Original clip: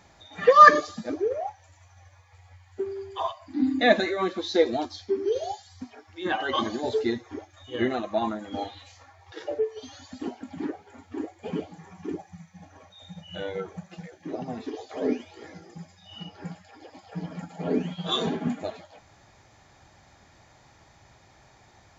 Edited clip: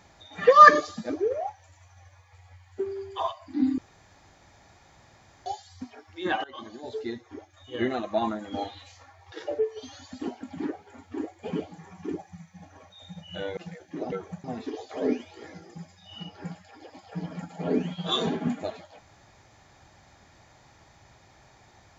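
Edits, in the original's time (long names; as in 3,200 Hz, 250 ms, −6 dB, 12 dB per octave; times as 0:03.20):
0:03.78–0:05.46: fill with room tone
0:06.44–0:08.19: fade in, from −20.5 dB
0:13.57–0:13.89: move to 0:14.44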